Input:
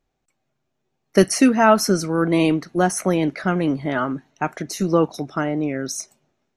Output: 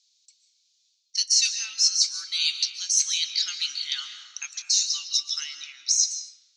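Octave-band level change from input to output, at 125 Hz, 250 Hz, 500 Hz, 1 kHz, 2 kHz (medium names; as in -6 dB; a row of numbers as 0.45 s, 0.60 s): under -40 dB, under -40 dB, under -40 dB, under -30 dB, -10.0 dB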